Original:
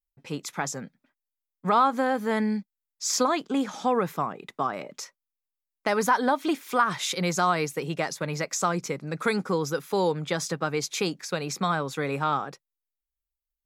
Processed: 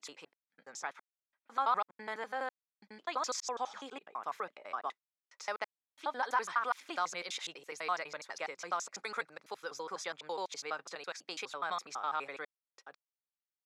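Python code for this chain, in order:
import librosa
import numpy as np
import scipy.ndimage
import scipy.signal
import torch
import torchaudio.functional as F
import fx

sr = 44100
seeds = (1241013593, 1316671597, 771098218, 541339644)

y = fx.block_reorder(x, sr, ms=83.0, group=6)
y = scipy.signal.sosfilt(scipy.signal.butter(2, 710.0, 'highpass', fs=sr, output='sos'), y)
y = fx.air_absorb(y, sr, metres=65.0)
y = y * librosa.db_to_amplitude(-7.5)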